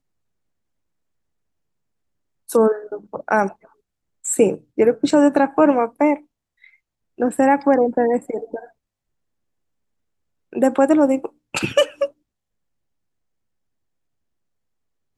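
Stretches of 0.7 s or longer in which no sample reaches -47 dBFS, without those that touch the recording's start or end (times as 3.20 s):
8.70–10.53 s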